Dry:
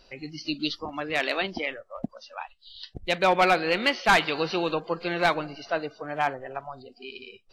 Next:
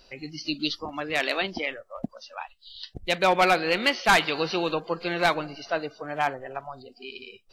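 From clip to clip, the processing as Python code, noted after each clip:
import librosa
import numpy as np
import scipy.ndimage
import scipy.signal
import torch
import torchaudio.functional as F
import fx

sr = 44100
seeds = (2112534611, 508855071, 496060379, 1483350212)

y = fx.high_shelf(x, sr, hz=6300.0, db=7.0)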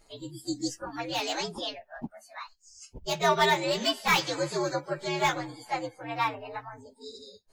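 y = fx.partial_stretch(x, sr, pct=120)
y = fx.peak_eq(y, sr, hz=8800.0, db=-9.5, octaves=0.44)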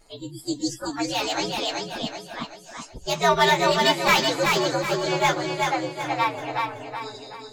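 y = fx.wow_flutter(x, sr, seeds[0], rate_hz=2.1, depth_cents=23.0)
y = fx.echo_feedback(y, sr, ms=378, feedback_pct=41, wet_db=-3.5)
y = F.gain(torch.from_numpy(y), 4.5).numpy()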